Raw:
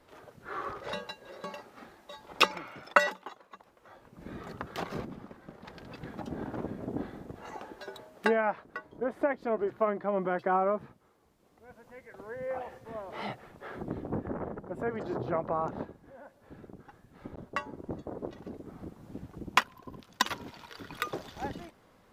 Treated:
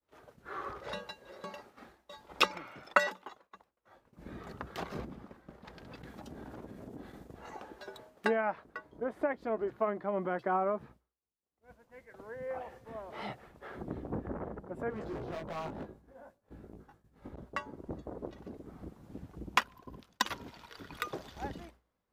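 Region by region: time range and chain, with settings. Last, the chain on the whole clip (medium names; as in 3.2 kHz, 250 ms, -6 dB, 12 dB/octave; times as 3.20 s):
6.02–7.34 s: expander -43 dBFS + treble shelf 3.3 kHz +9 dB + compression 3:1, threshold -41 dBFS
14.90–17.29 s: peaking EQ 2.3 kHz -4 dB 2.3 oct + hard clipper -35 dBFS + doubling 19 ms -3.5 dB
whole clip: expander -49 dBFS; peaking EQ 61 Hz +11 dB 0.28 oct; trim -3.5 dB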